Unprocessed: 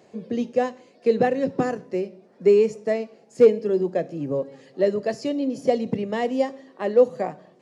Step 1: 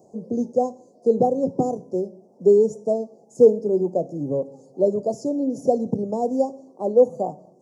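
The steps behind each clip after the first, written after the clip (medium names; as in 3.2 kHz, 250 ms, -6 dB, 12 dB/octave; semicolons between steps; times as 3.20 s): elliptic band-stop 830–6100 Hz, stop band 70 dB; trim +2 dB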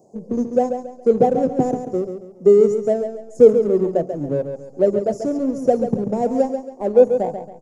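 in parallel at -7 dB: hysteresis with a dead band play -21 dBFS; on the sum: feedback delay 138 ms, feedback 34%, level -8 dB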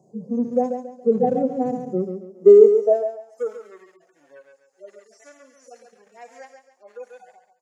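harmonic-percussive separation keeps harmonic; high-pass sweep 130 Hz -> 1.8 kHz, 1.85–3.82 s; trim -3.5 dB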